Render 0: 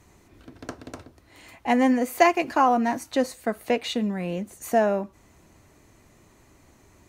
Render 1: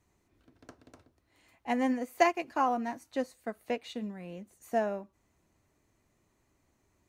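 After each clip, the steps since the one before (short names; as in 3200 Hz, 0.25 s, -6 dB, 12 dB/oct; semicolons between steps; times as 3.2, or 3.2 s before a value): upward expander 1.5:1, over -34 dBFS; gain -6 dB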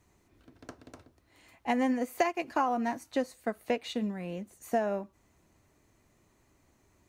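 compressor 5:1, threshold -30 dBFS, peak gain reduction 11.5 dB; gain +5.5 dB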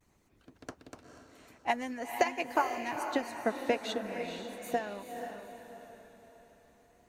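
harmonic-percussive split harmonic -14 dB; diffused feedback echo 0.47 s, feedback 45%, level -6.5 dB; vibrato 0.44 Hz 32 cents; gain +2.5 dB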